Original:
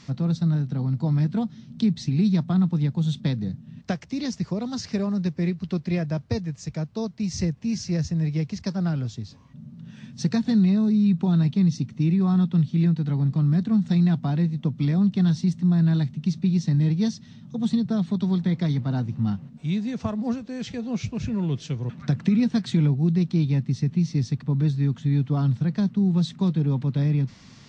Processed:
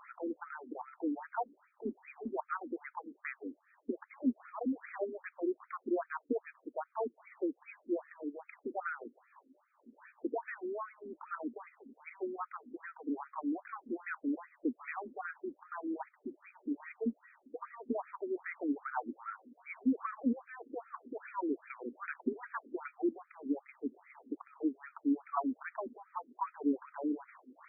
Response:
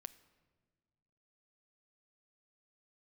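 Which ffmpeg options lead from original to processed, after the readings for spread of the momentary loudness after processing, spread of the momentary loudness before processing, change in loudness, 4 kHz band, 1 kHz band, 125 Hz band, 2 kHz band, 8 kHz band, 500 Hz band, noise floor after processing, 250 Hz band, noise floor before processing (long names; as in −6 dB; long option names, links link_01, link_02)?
11 LU, 9 LU, −16.0 dB, below −40 dB, 0.0 dB, below −40 dB, −2.5 dB, can't be measured, −5.5 dB, −73 dBFS, −15.5 dB, −48 dBFS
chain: -af "equalizer=frequency=125:width_type=o:width=1:gain=-8,equalizer=frequency=500:width_type=o:width=1:gain=-10,equalizer=frequency=1000:width_type=o:width=1:gain=5,equalizer=frequency=2000:width_type=o:width=1:gain=-6,equalizer=frequency=4000:width_type=o:width=1:gain=9,afftfilt=real='re*between(b*sr/1024,330*pow(1800/330,0.5+0.5*sin(2*PI*2.5*pts/sr))/1.41,330*pow(1800/330,0.5+0.5*sin(2*PI*2.5*pts/sr))*1.41)':imag='im*between(b*sr/1024,330*pow(1800/330,0.5+0.5*sin(2*PI*2.5*pts/sr))/1.41,330*pow(1800/330,0.5+0.5*sin(2*PI*2.5*pts/sr))*1.41)':win_size=1024:overlap=0.75,volume=6dB"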